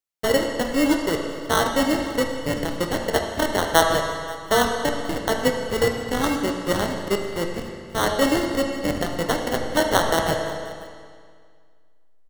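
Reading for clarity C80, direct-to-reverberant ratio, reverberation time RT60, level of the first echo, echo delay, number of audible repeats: 5.0 dB, 2.0 dB, 2.0 s, -21.0 dB, 532 ms, 1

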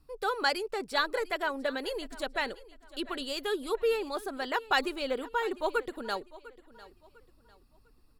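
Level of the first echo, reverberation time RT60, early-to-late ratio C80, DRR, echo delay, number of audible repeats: -19.0 dB, no reverb, no reverb, no reverb, 700 ms, 2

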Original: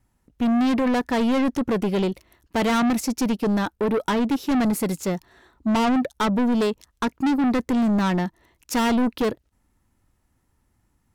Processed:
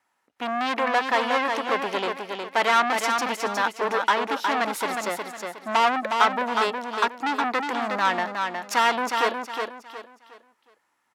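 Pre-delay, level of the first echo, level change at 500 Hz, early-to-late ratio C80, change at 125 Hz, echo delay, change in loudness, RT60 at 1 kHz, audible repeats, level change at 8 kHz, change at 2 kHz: no reverb, -5.0 dB, -1.5 dB, no reverb, under -15 dB, 363 ms, -1.5 dB, no reverb, 4, -1.0 dB, +7.0 dB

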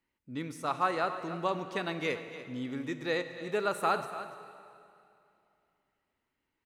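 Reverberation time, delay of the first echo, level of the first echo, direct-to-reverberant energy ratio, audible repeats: 2.6 s, 290 ms, -13.5 dB, 8.5 dB, 1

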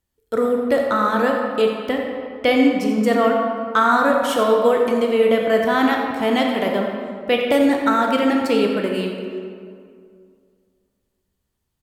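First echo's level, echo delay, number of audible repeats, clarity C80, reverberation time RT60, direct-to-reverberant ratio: -11.5 dB, 88 ms, 1, 3.0 dB, 2.2 s, 0.5 dB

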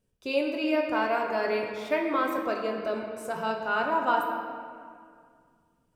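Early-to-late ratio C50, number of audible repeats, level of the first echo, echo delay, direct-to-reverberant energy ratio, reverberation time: 3.0 dB, no echo, no echo, no echo, 0.0 dB, 2.1 s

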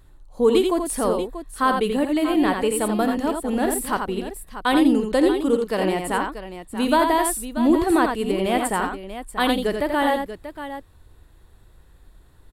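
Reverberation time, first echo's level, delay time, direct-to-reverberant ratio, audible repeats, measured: no reverb, -15.0 dB, 53 ms, no reverb, 3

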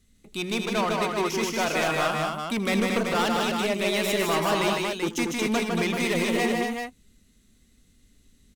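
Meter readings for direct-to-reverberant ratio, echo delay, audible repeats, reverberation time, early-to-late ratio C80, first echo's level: no reverb, 80 ms, 4, no reverb, no reverb, -16.5 dB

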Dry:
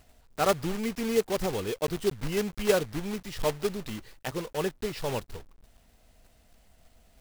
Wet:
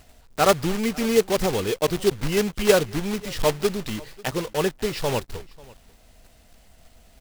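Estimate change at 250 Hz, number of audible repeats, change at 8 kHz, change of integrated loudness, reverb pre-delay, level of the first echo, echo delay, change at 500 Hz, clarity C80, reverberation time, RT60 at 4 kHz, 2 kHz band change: +6.5 dB, 1, +8.0 dB, +7.0 dB, no reverb, -23.0 dB, 542 ms, +6.5 dB, no reverb, no reverb, no reverb, +7.5 dB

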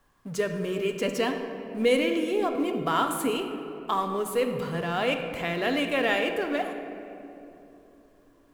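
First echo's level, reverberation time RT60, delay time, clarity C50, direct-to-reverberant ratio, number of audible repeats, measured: no echo, 2.9 s, no echo, 6.5 dB, 4.5 dB, no echo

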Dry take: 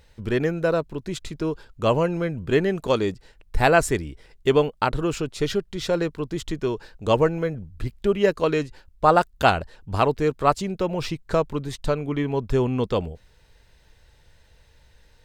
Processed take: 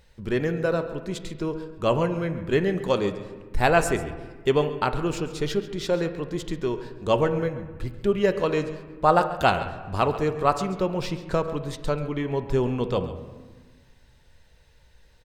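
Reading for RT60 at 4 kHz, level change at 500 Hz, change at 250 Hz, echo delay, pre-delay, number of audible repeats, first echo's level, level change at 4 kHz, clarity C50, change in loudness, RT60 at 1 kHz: 1.0 s, -2.0 dB, -1.5 dB, 137 ms, 5 ms, 1, -15.0 dB, -2.0 dB, 10.0 dB, -2.0 dB, 1.4 s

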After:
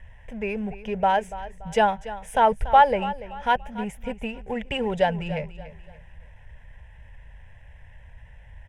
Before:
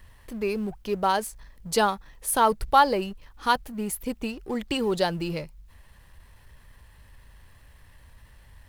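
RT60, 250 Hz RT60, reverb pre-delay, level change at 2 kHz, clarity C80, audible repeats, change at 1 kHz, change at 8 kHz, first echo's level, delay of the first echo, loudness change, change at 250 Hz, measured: no reverb, no reverb, no reverb, +2.0 dB, no reverb, 3, +3.0 dB, under -10 dB, -15.0 dB, 287 ms, +1.5 dB, -1.0 dB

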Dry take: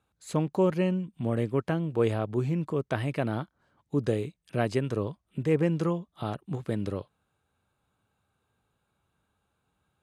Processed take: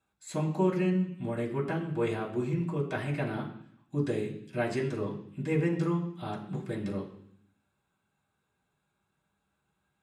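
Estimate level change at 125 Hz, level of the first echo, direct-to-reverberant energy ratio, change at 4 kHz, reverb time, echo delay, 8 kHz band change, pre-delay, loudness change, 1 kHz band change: -2.5 dB, no echo, -5.0 dB, -3.0 dB, 0.65 s, no echo, -0.5 dB, 3 ms, -2.5 dB, -2.0 dB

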